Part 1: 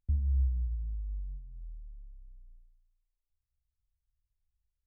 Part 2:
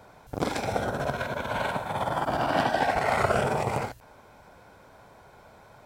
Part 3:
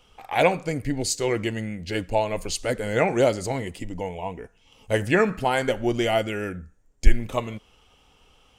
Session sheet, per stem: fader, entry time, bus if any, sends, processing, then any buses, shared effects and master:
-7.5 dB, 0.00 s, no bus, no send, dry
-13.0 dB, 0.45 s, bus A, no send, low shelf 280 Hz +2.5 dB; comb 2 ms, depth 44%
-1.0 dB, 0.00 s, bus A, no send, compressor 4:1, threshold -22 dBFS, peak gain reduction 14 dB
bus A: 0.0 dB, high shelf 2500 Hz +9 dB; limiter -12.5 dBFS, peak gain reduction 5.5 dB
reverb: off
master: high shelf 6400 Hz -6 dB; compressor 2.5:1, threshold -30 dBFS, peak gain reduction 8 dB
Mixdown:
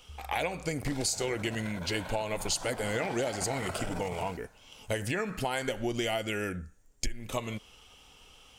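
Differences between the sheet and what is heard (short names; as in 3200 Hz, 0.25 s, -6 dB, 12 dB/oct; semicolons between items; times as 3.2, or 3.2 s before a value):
stem 1 -7.5 dB -> -18.5 dB; stem 2: missing comb 2 ms, depth 44%; master: missing high shelf 6400 Hz -6 dB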